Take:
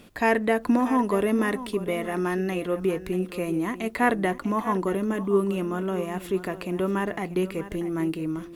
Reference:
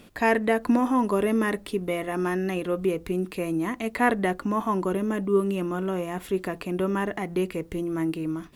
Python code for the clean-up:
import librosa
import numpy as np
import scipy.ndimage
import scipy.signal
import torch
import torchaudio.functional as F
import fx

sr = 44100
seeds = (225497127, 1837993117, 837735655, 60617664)

y = fx.fix_echo_inverse(x, sr, delay_ms=638, level_db=-14.0)